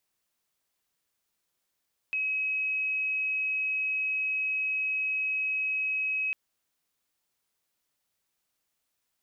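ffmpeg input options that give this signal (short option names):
-f lavfi -i "sine=f=2550:d=4.2:r=44100,volume=-8.44dB"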